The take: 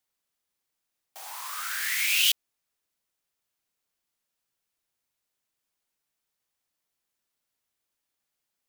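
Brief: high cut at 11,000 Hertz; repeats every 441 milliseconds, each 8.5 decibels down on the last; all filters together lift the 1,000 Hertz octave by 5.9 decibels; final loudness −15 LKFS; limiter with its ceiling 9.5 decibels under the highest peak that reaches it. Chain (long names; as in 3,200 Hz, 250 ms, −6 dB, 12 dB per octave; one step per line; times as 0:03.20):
low-pass filter 11,000 Hz
parametric band 1,000 Hz +7.5 dB
brickwall limiter −19.5 dBFS
repeating echo 441 ms, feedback 38%, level −8.5 dB
level +16 dB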